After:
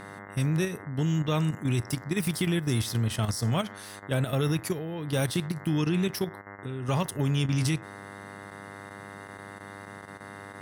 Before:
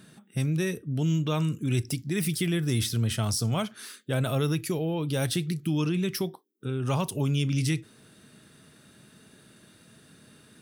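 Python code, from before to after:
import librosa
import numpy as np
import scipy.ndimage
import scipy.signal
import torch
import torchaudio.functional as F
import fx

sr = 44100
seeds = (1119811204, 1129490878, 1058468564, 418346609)

y = fx.dmg_buzz(x, sr, base_hz=100.0, harmonics=21, level_db=-45.0, tilt_db=-1, odd_only=False)
y = fx.level_steps(y, sr, step_db=9)
y = y * librosa.db_to_amplitude(2.0)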